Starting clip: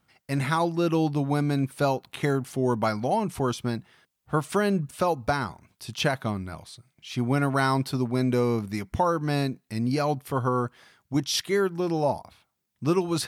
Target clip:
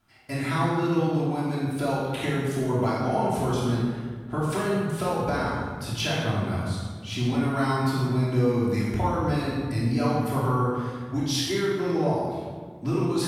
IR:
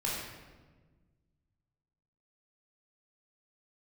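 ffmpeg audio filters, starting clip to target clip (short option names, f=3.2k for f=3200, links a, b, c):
-filter_complex "[0:a]acompressor=threshold=-28dB:ratio=6[a];[1:a]atrim=start_sample=2205,asetrate=33075,aresample=44100[b];[a][b]afir=irnorm=-1:irlink=0,volume=-1.5dB"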